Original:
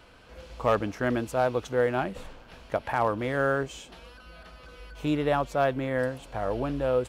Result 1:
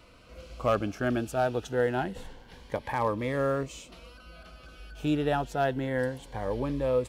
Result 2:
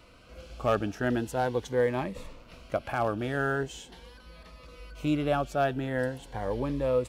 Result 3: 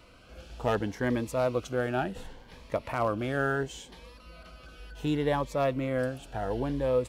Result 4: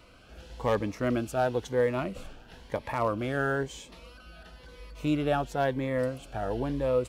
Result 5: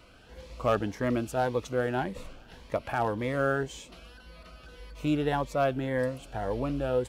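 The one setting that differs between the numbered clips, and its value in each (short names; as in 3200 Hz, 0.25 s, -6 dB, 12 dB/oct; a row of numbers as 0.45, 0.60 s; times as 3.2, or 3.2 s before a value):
cascading phaser, rate: 0.27, 0.42, 0.7, 1, 1.8 Hz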